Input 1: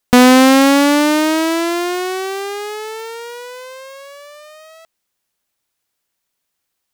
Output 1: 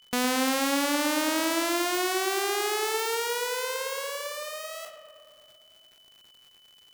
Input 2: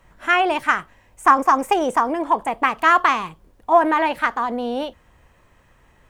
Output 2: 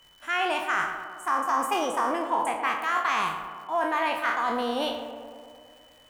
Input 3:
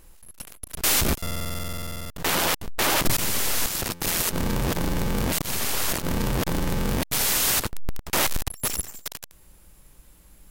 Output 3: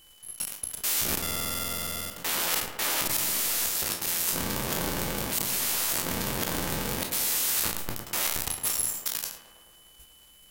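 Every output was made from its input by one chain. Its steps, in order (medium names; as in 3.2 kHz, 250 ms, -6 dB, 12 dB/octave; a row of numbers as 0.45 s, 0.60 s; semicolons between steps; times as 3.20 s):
spectral sustain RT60 0.41 s; gate -45 dBFS, range -7 dB; tilt EQ +2 dB/octave; reverse; compression 6:1, threshold -24 dBFS; reverse; whistle 3 kHz -56 dBFS; on a send: tape echo 110 ms, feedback 78%, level -8 dB, low-pass 2.1 kHz; on the sum: crackle 250 per s -46 dBFS; normalise loudness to -27 LUFS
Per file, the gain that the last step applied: +1.0 dB, 0.0 dB, -1.0 dB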